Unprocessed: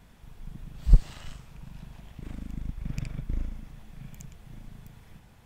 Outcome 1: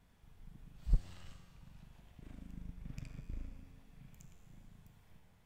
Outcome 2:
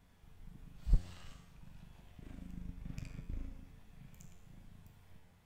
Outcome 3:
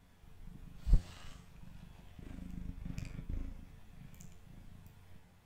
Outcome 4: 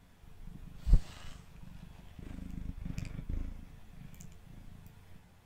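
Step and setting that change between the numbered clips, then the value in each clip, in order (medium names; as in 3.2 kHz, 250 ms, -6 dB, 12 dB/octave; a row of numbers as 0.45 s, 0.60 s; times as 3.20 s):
feedback comb, decay: 2.2 s, 0.82 s, 0.37 s, 0.16 s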